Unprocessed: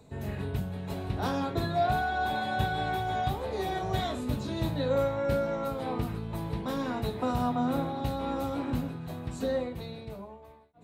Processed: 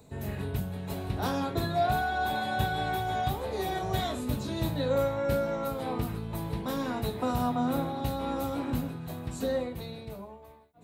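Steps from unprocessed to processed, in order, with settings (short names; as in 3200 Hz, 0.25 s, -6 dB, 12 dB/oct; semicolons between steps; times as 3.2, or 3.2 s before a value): high shelf 9000 Hz +10.5 dB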